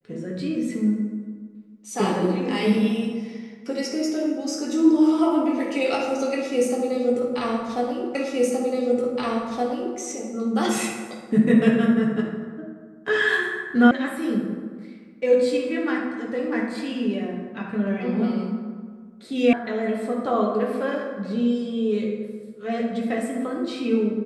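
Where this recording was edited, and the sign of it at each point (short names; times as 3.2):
8.15 repeat of the last 1.82 s
13.91 sound cut off
19.53 sound cut off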